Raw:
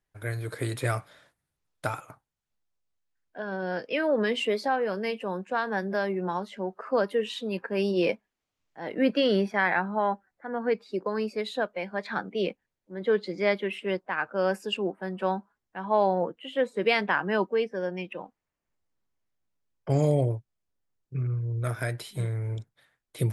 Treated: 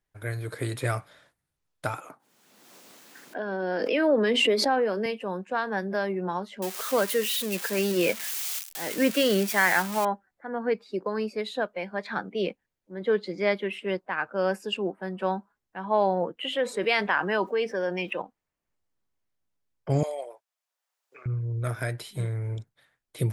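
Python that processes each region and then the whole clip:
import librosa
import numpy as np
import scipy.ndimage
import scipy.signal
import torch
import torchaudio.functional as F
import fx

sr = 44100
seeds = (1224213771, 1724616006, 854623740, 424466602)

y = fx.chain(x, sr, fx.highpass(hz=230.0, slope=24),
    fx.low_shelf(hz=340.0, db=8.5),
    fx.pre_swell(db_per_s=33.0), at=(1.98, 5.06))
y = fx.chain(y, sr, fx.crossing_spikes(level_db=-22.0),
    fx.dynamic_eq(hz=2000.0, q=1.1, threshold_db=-41.0, ratio=4.0, max_db=4), at=(6.62, 10.05))
y = fx.chain(y, sr, fx.low_shelf(hz=270.0, db=-11.5),
    fx.env_flatten(amount_pct=50), at=(16.39, 18.22))
y = fx.chain(y, sr, fx.highpass(hz=640.0, slope=24),
    fx.band_squash(depth_pct=40), at=(20.03, 21.26))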